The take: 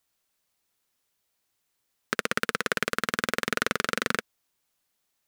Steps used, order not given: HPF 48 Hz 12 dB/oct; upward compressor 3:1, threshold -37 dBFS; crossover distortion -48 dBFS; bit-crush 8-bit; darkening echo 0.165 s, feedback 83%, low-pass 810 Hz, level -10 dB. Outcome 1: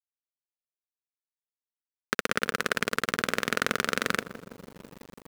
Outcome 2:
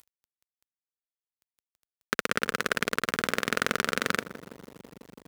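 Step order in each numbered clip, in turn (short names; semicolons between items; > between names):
darkening echo > bit-crush > HPF > crossover distortion > upward compressor; darkening echo > upward compressor > crossover distortion > bit-crush > HPF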